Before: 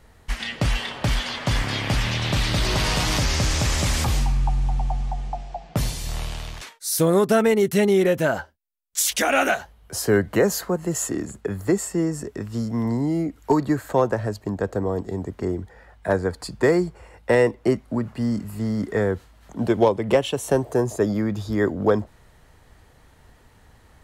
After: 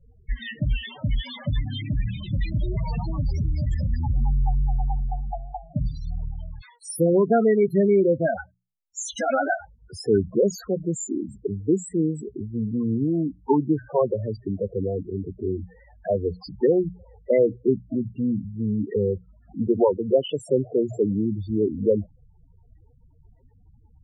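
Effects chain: vibrato 3.3 Hz 68 cents; notches 60/120/180 Hz; loudest bins only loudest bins 8

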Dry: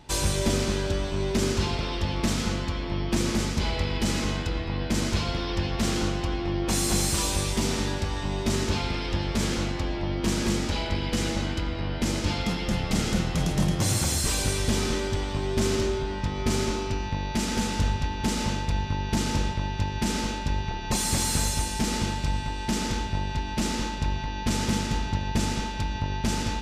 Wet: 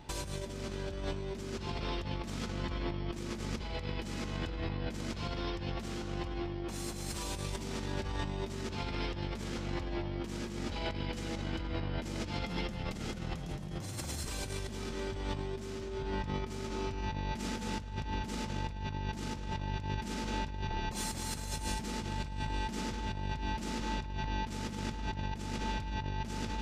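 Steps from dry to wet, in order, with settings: bell 9300 Hz -5 dB 2.3 oct; negative-ratio compressor -32 dBFS, ratio -1; gain -5.5 dB

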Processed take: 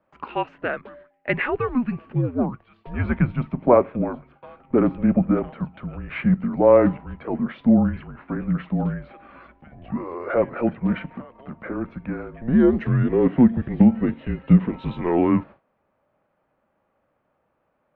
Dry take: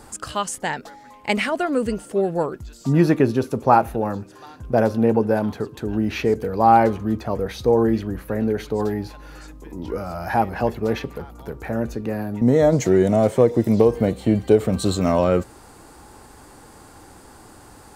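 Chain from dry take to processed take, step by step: gate with hold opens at -32 dBFS; dynamic EQ 440 Hz, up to +5 dB, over -30 dBFS, Q 3.6; mistuned SSB -250 Hz 420–2900 Hz

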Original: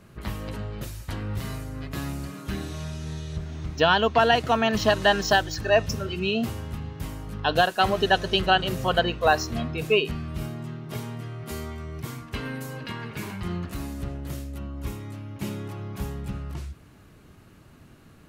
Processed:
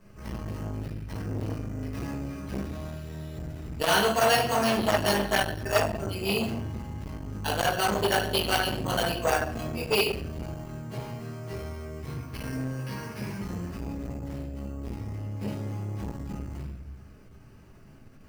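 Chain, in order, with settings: dynamic EQ 3400 Hz, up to +5 dB, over -38 dBFS, Q 1.3; careless resampling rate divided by 6×, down filtered, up hold; shoebox room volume 88 m³, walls mixed, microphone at 1.5 m; core saturation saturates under 1500 Hz; gain -8 dB

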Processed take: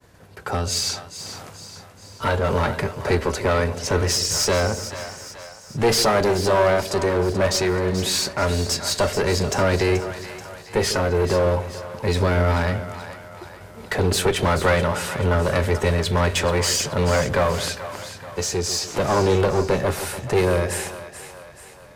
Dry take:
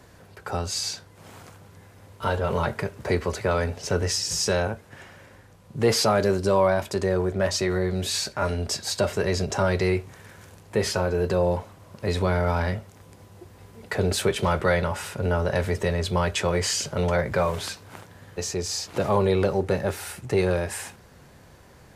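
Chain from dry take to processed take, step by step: expander -45 dBFS; one-sided clip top -25.5 dBFS; split-band echo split 550 Hz, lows 0.145 s, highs 0.432 s, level -11.5 dB; gain +5.5 dB

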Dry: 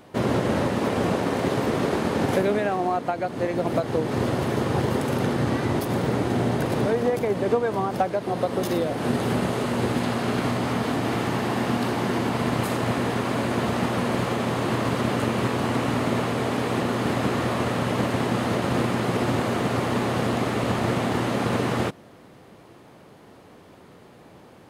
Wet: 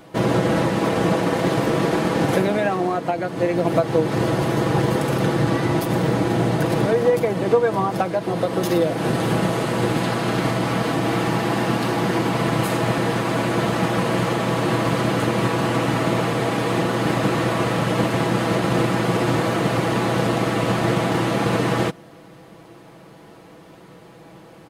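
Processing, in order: comb 6.1 ms, depth 56%; gain +3 dB

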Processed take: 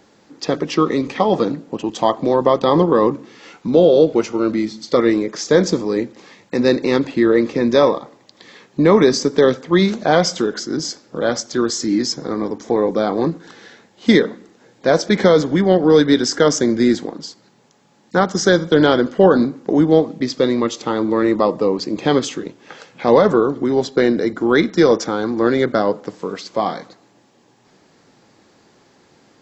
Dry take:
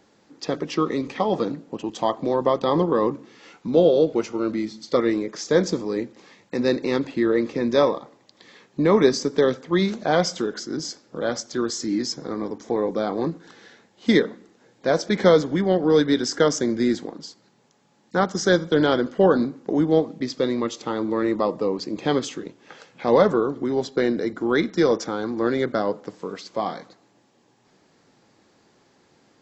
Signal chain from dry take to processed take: maximiser +7.5 dB; gain -1 dB

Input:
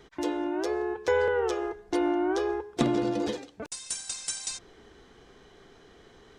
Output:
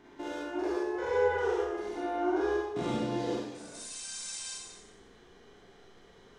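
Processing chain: stepped spectrum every 0.2 s; Schroeder reverb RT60 0.81 s, combs from 32 ms, DRR -5 dB; gain -7 dB

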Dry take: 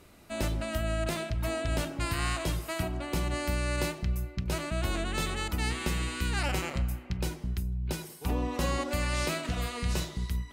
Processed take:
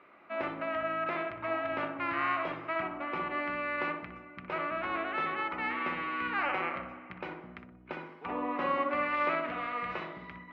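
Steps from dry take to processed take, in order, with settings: speaker cabinet 390–2400 Hz, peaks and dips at 430 Hz -4 dB, 1200 Hz +8 dB, 2200 Hz +5 dB; darkening echo 61 ms, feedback 58%, low-pass 1200 Hz, level -4 dB

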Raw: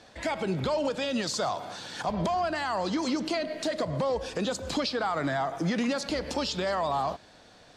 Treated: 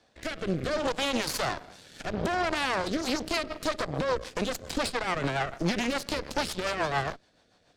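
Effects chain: added harmonics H 4 -8 dB, 7 -21 dB, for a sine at -18 dBFS; rotary speaker horn 0.65 Hz, later 7 Hz, at 2.66

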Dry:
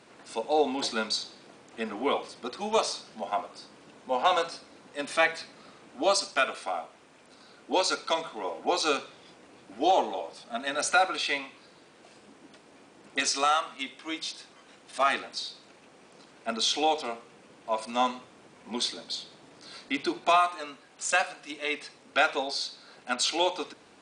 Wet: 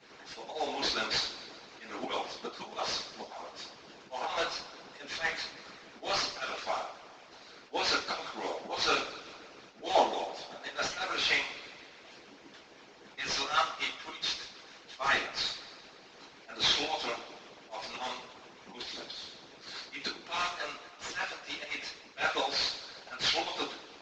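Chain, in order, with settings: CVSD 32 kbps; low shelf 450 Hz -5 dB; auto swell 0.161 s; two-slope reverb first 0.32 s, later 1.9 s, from -18 dB, DRR -6.5 dB; harmonic-percussive split harmonic -16 dB

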